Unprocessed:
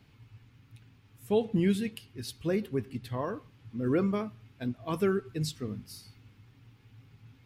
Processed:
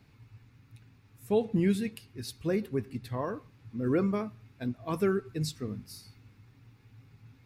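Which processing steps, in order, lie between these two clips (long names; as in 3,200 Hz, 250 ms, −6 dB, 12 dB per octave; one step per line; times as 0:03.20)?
parametric band 3,100 Hz −9 dB 0.2 octaves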